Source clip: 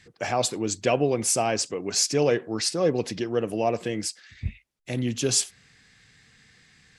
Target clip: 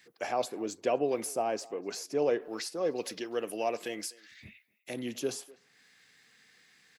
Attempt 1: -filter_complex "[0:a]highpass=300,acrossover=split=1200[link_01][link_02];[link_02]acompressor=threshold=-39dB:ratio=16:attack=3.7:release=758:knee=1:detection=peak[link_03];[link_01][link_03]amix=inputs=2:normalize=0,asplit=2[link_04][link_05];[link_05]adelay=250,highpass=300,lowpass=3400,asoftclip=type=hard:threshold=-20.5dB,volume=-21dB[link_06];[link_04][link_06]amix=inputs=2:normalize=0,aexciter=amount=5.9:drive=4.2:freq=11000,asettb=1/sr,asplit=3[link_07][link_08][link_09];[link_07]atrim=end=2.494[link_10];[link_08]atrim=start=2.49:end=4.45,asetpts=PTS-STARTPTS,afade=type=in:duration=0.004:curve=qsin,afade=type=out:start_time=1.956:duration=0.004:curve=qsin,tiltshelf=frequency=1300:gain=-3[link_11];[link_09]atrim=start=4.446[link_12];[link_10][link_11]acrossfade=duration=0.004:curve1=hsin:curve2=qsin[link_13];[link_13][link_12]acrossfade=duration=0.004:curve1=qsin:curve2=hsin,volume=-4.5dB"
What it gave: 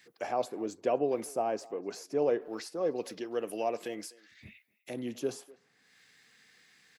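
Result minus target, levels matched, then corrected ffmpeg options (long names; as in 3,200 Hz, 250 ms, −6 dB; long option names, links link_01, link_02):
downward compressor: peak gain reduction +6.5 dB
-filter_complex "[0:a]highpass=300,acrossover=split=1200[link_01][link_02];[link_02]acompressor=threshold=-32dB:ratio=16:attack=3.7:release=758:knee=1:detection=peak[link_03];[link_01][link_03]amix=inputs=2:normalize=0,asplit=2[link_04][link_05];[link_05]adelay=250,highpass=300,lowpass=3400,asoftclip=type=hard:threshold=-20.5dB,volume=-21dB[link_06];[link_04][link_06]amix=inputs=2:normalize=0,aexciter=amount=5.9:drive=4.2:freq=11000,asettb=1/sr,asplit=3[link_07][link_08][link_09];[link_07]atrim=end=2.494[link_10];[link_08]atrim=start=2.49:end=4.45,asetpts=PTS-STARTPTS,afade=type=in:duration=0.004:curve=qsin,afade=type=out:start_time=1.956:duration=0.004:curve=qsin,tiltshelf=frequency=1300:gain=-3[link_11];[link_09]atrim=start=4.446[link_12];[link_10][link_11]acrossfade=duration=0.004:curve1=hsin:curve2=qsin[link_13];[link_13][link_12]acrossfade=duration=0.004:curve1=qsin:curve2=hsin,volume=-4.5dB"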